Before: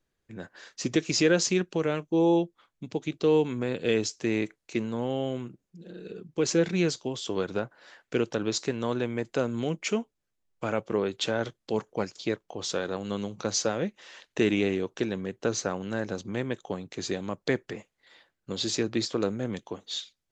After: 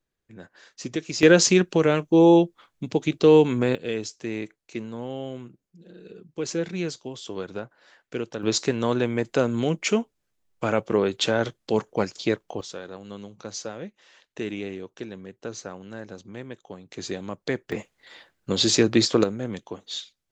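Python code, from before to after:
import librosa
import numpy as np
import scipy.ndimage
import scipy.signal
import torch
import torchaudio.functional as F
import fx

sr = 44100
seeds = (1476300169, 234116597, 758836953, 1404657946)

y = fx.gain(x, sr, db=fx.steps((0.0, -3.5), (1.23, 7.5), (3.75, -3.5), (8.43, 5.5), (12.61, -7.0), (16.89, -0.5), (17.72, 9.0), (19.24, 1.0)))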